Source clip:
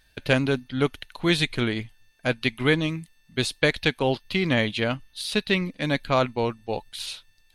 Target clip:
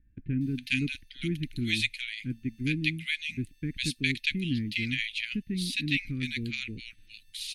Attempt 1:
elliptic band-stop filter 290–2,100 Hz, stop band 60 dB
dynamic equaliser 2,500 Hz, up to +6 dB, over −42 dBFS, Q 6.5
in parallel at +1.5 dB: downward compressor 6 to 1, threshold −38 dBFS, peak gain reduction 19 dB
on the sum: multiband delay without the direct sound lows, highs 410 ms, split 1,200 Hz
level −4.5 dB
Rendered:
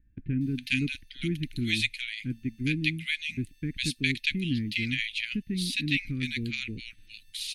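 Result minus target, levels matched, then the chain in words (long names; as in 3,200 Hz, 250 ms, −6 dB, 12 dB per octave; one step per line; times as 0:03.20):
downward compressor: peak gain reduction −7.5 dB
elliptic band-stop filter 290–2,100 Hz, stop band 60 dB
dynamic equaliser 2,500 Hz, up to +6 dB, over −42 dBFS, Q 6.5
in parallel at +1.5 dB: downward compressor 6 to 1, threshold −47 dBFS, peak gain reduction 26.5 dB
on the sum: multiband delay without the direct sound lows, highs 410 ms, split 1,200 Hz
level −4.5 dB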